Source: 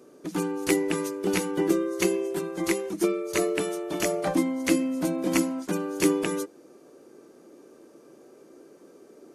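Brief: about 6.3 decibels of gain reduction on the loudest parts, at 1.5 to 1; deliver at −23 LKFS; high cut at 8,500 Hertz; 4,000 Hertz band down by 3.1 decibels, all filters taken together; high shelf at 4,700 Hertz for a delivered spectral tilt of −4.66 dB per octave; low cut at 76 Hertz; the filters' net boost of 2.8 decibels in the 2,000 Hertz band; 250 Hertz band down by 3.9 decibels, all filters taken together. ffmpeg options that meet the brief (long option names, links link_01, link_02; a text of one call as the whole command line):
ffmpeg -i in.wav -af "highpass=76,lowpass=8500,equalizer=frequency=250:width_type=o:gain=-5.5,equalizer=frequency=2000:width_type=o:gain=5.5,equalizer=frequency=4000:width_type=o:gain=-3.5,highshelf=frequency=4700:gain=-6.5,acompressor=threshold=-38dB:ratio=1.5,volume=11dB" out.wav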